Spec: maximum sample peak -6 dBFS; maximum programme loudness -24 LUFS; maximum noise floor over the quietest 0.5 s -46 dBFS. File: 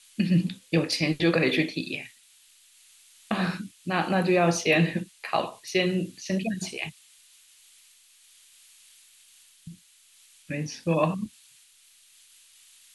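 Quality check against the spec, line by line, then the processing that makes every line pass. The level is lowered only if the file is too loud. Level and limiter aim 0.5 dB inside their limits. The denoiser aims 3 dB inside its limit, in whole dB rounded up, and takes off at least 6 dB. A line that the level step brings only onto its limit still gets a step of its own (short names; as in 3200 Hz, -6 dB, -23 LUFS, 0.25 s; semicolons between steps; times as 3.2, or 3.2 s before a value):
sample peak -9.5 dBFS: OK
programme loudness -26.5 LUFS: OK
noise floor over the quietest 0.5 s -58 dBFS: OK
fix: none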